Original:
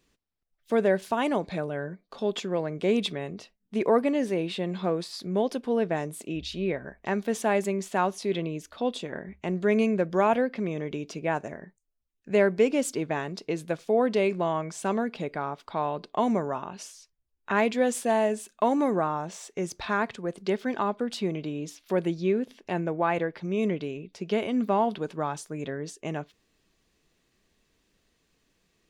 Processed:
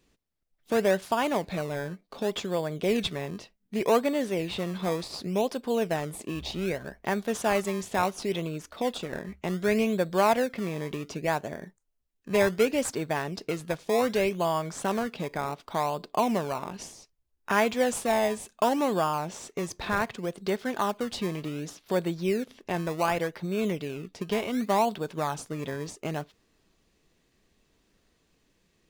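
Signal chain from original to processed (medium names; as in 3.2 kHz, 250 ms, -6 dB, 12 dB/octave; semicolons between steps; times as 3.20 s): in parallel at -8 dB: decimation with a swept rate 21×, swing 100% 0.67 Hz; on the sum: dynamic bell 290 Hz, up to -6 dB, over -33 dBFS, Q 0.77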